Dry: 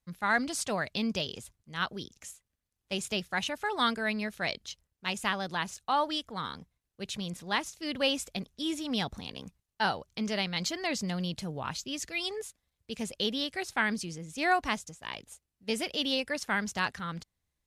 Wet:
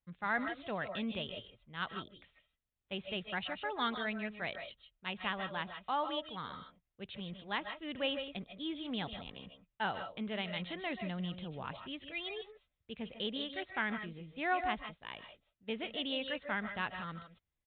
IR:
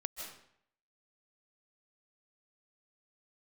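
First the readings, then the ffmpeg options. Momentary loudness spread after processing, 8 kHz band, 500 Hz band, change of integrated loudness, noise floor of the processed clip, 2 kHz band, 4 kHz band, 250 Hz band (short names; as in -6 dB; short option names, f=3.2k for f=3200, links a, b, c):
13 LU, under -40 dB, -5.5 dB, -6.5 dB, under -85 dBFS, -6.0 dB, -7.5 dB, -6.5 dB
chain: -filter_complex "[1:a]atrim=start_sample=2205,afade=t=out:st=0.21:d=0.01,atrim=end_sample=9702[a];[0:a][a]afir=irnorm=-1:irlink=0,aresample=8000,aresample=44100,volume=-4.5dB"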